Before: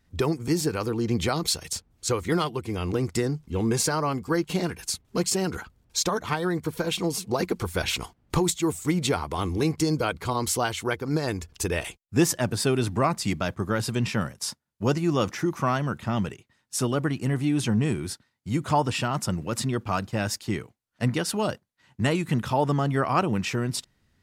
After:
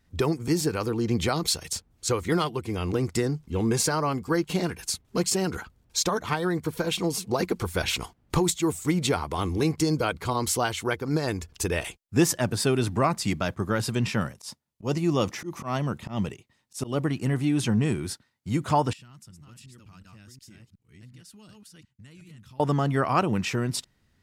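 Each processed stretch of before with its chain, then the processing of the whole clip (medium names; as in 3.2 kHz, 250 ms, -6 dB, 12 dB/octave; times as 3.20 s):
14.34–17.10 s: peaking EQ 1.5 kHz -7 dB 0.42 oct + slow attack 130 ms
18.93–22.60 s: chunks repeated in reverse 365 ms, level -3.5 dB + amplifier tone stack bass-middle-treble 6-0-2 + compression 4:1, threshold -46 dBFS
whole clip: none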